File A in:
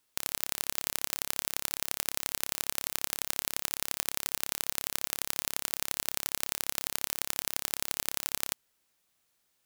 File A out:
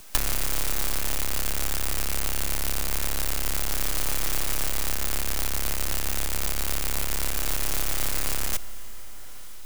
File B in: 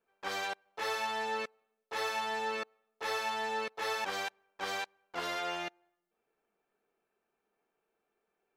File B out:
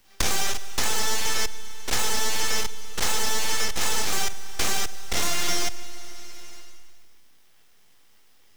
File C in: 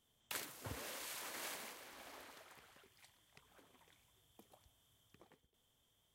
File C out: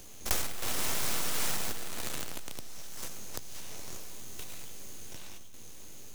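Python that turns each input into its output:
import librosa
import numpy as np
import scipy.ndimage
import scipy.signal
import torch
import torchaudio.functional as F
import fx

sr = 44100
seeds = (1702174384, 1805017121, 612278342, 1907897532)

p1 = fx.spec_steps(x, sr, hold_ms=50)
p2 = fx.peak_eq(p1, sr, hz=120.0, db=-13.0, octaves=2.9)
p3 = fx.notch(p2, sr, hz=860.0, q=12.0)
p4 = fx.fuzz(p3, sr, gain_db=46.0, gate_db=-55.0)
p5 = p3 + F.gain(torch.from_numpy(p4), -9.0).numpy()
p6 = fx.high_shelf_res(p5, sr, hz=2200.0, db=6.5, q=3.0)
p7 = np.abs(p6)
p8 = fx.rev_schroeder(p7, sr, rt60_s=1.5, comb_ms=25, drr_db=15.5)
p9 = fx.band_squash(p8, sr, depth_pct=100)
y = F.gain(torch.from_numpy(p9), -5.5).numpy()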